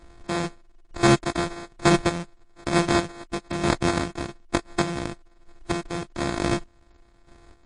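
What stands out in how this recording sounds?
a buzz of ramps at a fixed pitch in blocks of 128 samples; chopped level 1.1 Hz, depth 60%, duty 30%; aliases and images of a low sample rate 2.9 kHz, jitter 0%; MP3

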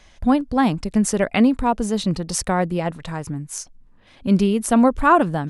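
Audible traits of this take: noise floor -51 dBFS; spectral tilt -5.5 dB/octave

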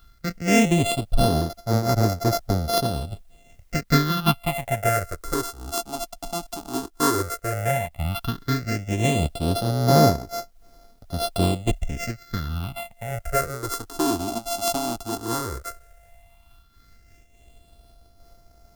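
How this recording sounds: a buzz of ramps at a fixed pitch in blocks of 64 samples; phasing stages 6, 0.12 Hz, lowest notch 130–2800 Hz; a quantiser's noise floor 12-bit, dither triangular; random flutter of the level

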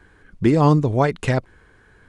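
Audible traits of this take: noise floor -54 dBFS; spectral tilt -6.5 dB/octave

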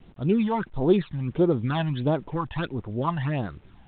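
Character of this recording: phasing stages 12, 1.5 Hz, lowest notch 390–2900 Hz; a quantiser's noise floor 10-bit, dither none; G.726

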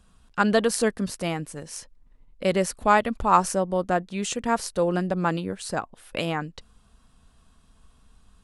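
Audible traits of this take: noise floor -59 dBFS; spectral tilt -4.5 dB/octave

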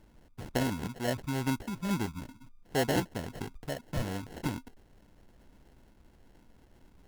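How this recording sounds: phasing stages 4, 2.2 Hz, lowest notch 490–1200 Hz; aliases and images of a low sample rate 1.2 kHz, jitter 0%; AAC

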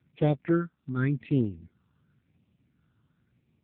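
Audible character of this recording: phasing stages 6, 0.91 Hz, lowest notch 560–1400 Hz; AMR-NB

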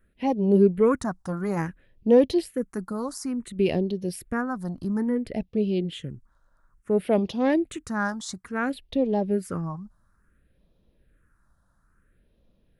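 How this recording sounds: phasing stages 4, 0.58 Hz, lowest notch 410–1500 Hz

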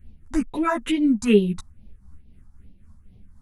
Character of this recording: phasing stages 4, 2.3 Hz, lowest notch 440–1400 Hz; tremolo triangle 3.9 Hz, depth 55%; a shimmering, thickened sound

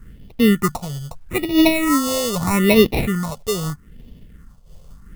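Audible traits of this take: aliases and images of a low sample rate 1.6 kHz, jitter 0%; phasing stages 4, 0.79 Hz, lowest notch 260–1400 Hz; a quantiser's noise floor 12-bit, dither none; random flutter of the level

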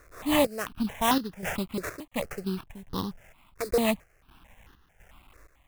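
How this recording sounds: a quantiser's noise floor 10-bit, dither none; chopped level 1.4 Hz, depth 65%, duty 65%; aliases and images of a low sample rate 4.6 kHz, jitter 20%; notches that jump at a steady rate 4.5 Hz 840–2300 Hz

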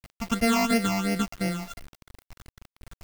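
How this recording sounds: a buzz of ramps at a fixed pitch in blocks of 64 samples; phasing stages 8, 2.9 Hz, lowest notch 450–1100 Hz; a quantiser's noise floor 8-bit, dither none

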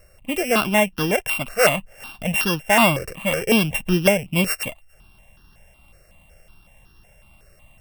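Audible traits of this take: a buzz of ramps at a fixed pitch in blocks of 16 samples; notches that jump at a steady rate 5.4 Hz 920–2200 Hz

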